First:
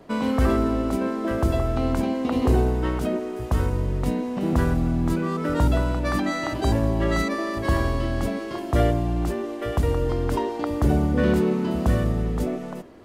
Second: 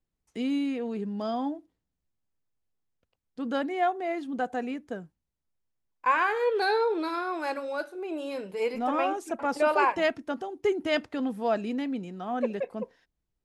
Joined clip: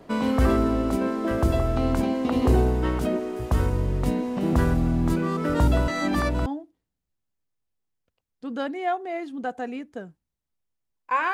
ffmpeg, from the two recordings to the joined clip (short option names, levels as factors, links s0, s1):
-filter_complex "[0:a]apad=whole_dur=11.33,atrim=end=11.33,asplit=2[s0][s1];[s0]atrim=end=5.882[s2];[s1]atrim=start=5.878:end=6.462,asetpts=PTS-STARTPTS,areverse[s3];[1:a]atrim=start=1.408:end=6.28[s4];[s2][s3]acrossfade=d=0.004:c1=hsin:c2=hsin[s5];[s5][s4]acrossfade=d=0.004:c1=hsin:c2=hsin"